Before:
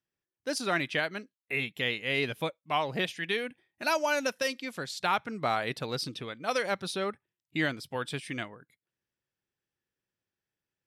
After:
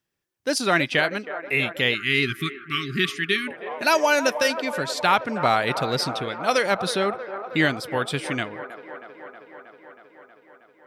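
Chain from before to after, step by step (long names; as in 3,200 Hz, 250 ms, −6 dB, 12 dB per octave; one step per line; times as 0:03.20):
delay with a band-pass on its return 318 ms, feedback 74%, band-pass 780 Hz, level −10 dB
time-frequency box erased 0:01.95–0:03.48, 410–1,100 Hz
level +8.5 dB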